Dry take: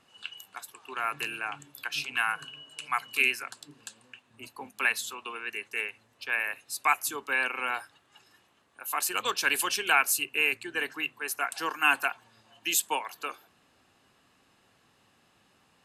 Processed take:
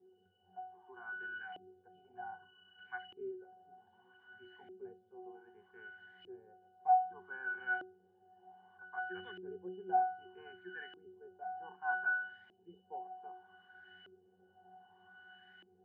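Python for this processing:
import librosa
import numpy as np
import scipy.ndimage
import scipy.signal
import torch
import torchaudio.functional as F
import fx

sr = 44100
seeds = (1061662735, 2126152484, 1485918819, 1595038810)

y = x + 0.5 * 10.0 ** (-24.5 / 20.0) * np.diff(np.sign(x), prepend=np.sign(x[:1]))
y = fx.cheby_harmonics(y, sr, harmonics=(6, 8), levels_db=(-31, -43), full_scale_db=-8.0)
y = scipy.signal.sosfilt(scipy.signal.butter(2, 89.0, 'highpass', fs=sr, output='sos'), y)
y = fx.octave_resonator(y, sr, note='F#', decay_s=0.52)
y = fx.filter_lfo_lowpass(y, sr, shape='saw_up', hz=0.64, low_hz=360.0, high_hz=2100.0, q=4.3)
y = y * 10.0 ** (5.0 / 20.0)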